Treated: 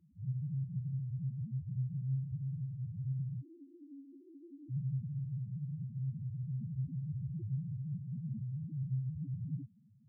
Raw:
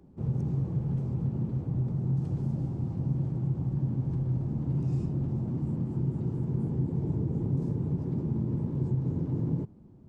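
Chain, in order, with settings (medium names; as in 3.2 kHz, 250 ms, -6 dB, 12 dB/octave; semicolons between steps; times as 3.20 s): 3.41–4.71 s: Chebyshev high-pass 270 Hz, order 8; loudest bins only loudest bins 1; trim -2 dB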